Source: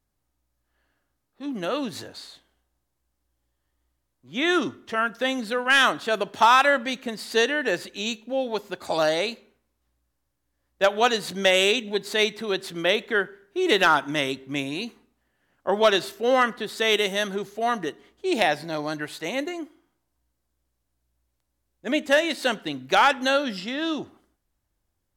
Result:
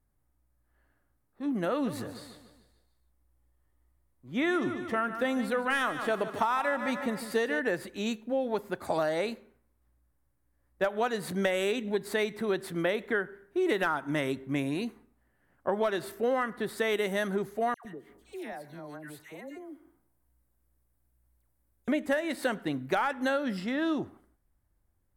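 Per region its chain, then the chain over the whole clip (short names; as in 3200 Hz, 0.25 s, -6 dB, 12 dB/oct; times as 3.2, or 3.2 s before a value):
1.71–7.6 notch 1600 Hz, Q 16 + feedback echo 0.147 s, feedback 51%, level -12.5 dB
17.74–21.88 high shelf 9900 Hz +8 dB + compressor 2:1, threshold -50 dBFS + dispersion lows, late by 0.108 s, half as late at 1300 Hz
whole clip: band shelf 4300 Hz -9 dB; compressor 6:1, threshold -24 dBFS; low shelf 180 Hz +6.5 dB; gain -1.5 dB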